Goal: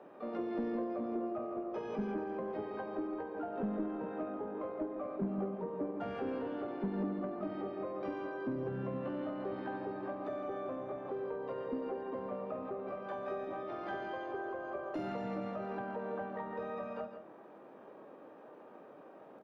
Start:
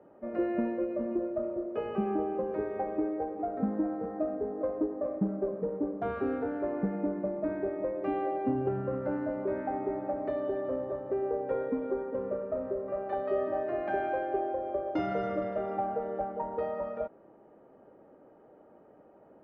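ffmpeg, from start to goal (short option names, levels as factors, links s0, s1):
-filter_complex "[0:a]highpass=160,acrossover=split=210[s0][s1];[s1]acompressor=threshold=0.00794:ratio=5[s2];[s0][s2]amix=inputs=2:normalize=0,asplit=3[s3][s4][s5];[s4]asetrate=55563,aresample=44100,atempo=0.793701,volume=0.282[s6];[s5]asetrate=88200,aresample=44100,atempo=0.5,volume=0.398[s7];[s3][s6][s7]amix=inputs=3:normalize=0,asoftclip=type=tanh:threshold=0.0316,aecho=1:1:49|86|142|163:0.106|0.126|0.188|0.316,volume=1.19"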